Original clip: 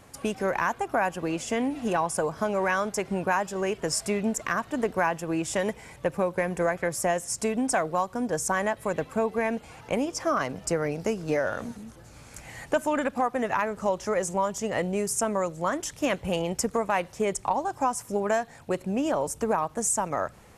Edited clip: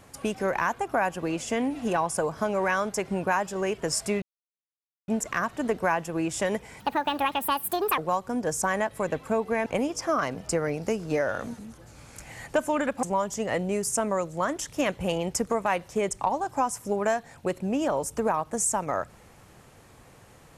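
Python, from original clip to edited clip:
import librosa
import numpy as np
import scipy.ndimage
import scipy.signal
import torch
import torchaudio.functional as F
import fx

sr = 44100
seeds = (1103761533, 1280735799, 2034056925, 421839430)

y = fx.edit(x, sr, fx.insert_silence(at_s=4.22, length_s=0.86),
    fx.speed_span(start_s=5.94, length_s=1.9, speed=1.61),
    fx.cut(start_s=9.52, length_s=0.32),
    fx.cut(start_s=13.21, length_s=1.06), tone=tone)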